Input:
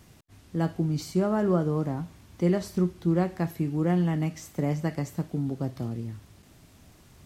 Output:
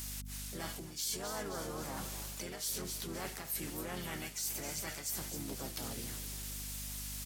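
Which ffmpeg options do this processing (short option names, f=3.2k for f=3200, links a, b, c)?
-filter_complex "[0:a]alimiter=limit=-23.5dB:level=0:latency=1:release=42,aderivative,asplit=5[a][b][c][d][e];[b]adelay=263,afreqshift=50,volume=-14dB[f];[c]adelay=526,afreqshift=100,volume=-20.7dB[g];[d]adelay=789,afreqshift=150,volume=-27.5dB[h];[e]adelay=1052,afreqshift=200,volume=-34.2dB[i];[a][f][g][h][i]amix=inputs=5:normalize=0,asplit=4[j][k][l][m];[k]asetrate=33038,aresample=44100,atempo=1.33484,volume=-6dB[n];[l]asetrate=52444,aresample=44100,atempo=0.840896,volume=-5dB[o];[m]asetrate=66075,aresample=44100,atempo=0.66742,volume=-17dB[p];[j][n][o][p]amix=inputs=4:normalize=0,aeval=exprs='val(0)+0.000794*(sin(2*PI*50*n/s)+sin(2*PI*2*50*n/s)/2+sin(2*PI*3*50*n/s)/3+sin(2*PI*4*50*n/s)/4+sin(2*PI*5*50*n/s)/5)':c=same,areverse,acompressor=threshold=-56dB:ratio=4,areverse,volume=18dB"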